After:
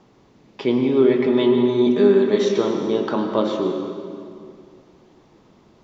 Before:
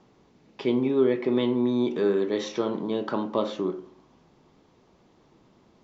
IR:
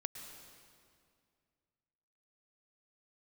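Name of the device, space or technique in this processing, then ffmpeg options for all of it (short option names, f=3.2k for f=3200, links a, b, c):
stairwell: -filter_complex "[0:a]asettb=1/sr,asplit=3[a][b][c];[a]atrim=end=1.044[d];[b]atrim=start=1.04:end=2.45,asetpts=PTS-STARTPTS,afade=t=in:d=0.004:c=qsin,afade=t=out:st=1.406:d=0.004:c=qsin,aecho=1:1:5:0.57,atrim=end_sample=62181[e];[c]atrim=start=2.446[f];[d][e]acrossfade=d=0.004:c1=hsin:c2=qsin[g];[g][f]acrossfade=d=0.004:c1=qsin:c2=hsin[h];[1:a]atrim=start_sample=2205[i];[h][i]afir=irnorm=-1:irlink=0,volume=7.5dB"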